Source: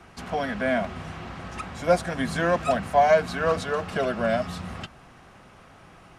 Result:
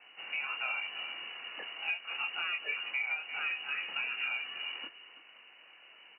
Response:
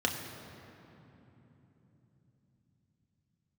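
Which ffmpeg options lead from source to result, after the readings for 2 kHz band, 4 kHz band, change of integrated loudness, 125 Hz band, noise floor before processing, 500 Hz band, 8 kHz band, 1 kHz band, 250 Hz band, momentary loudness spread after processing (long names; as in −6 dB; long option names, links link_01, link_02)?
−3.0 dB, +2.5 dB, −10.0 dB, below −40 dB, −51 dBFS, −32.5 dB, below −35 dB, −19.0 dB, below −30 dB, 21 LU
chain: -af "flanger=delay=20:depth=7.6:speed=1.1,aecho=1:1:331:0.158,lowpass=frequency=2600:width_type=q:width=0.5098,lowpass=frequency=2600:width_type=q:width=0.6013,lowpass=frequency=2600:width_type=q:width=0.9,lowpass=frequency=2600:width_type=q:width=2.563,afreqshift=-3000,equalizer=frequency=1700:width=2:gain=-6,acompressor=threshold=-30dB:ratio=12,highpass=260,volume=-1.5dB"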